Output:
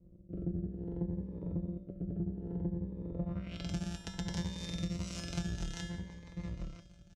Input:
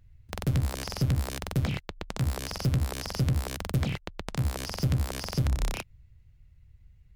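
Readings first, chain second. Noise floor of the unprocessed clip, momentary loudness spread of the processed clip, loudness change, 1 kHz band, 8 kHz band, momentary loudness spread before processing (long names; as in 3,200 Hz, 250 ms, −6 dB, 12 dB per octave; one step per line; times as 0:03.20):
−58 dBFS, 6 LU, −9.5 dB, −14.0 dB, −10.0 dB, 8 LU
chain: samples sorted by size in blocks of 256 samples
parametric band 2,900 Hz +3.5 dB 0.26 octaves
slap from a distant wall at 170 metres, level −11 dB
rotating-speaker cabinet horn 0.65 Hz, later 6 Hz, at 0:04.72
low-pass filter sweep 400 Hz → 6,300 Hz, 0:03.12–0:03.68
high-pass filter 46 Hz
low-shelf EQ 72 Hz +11.5 dB
tuned comb filter 190 Hz, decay 0.57 s, harmonics odd, mix 90%
downward compressor 6 to 1, threshold −47 dBFS, peak gain reduction 13.5 dB
phaser whose notches keep moving one way rising 0.61 Hz
level +13.5 dB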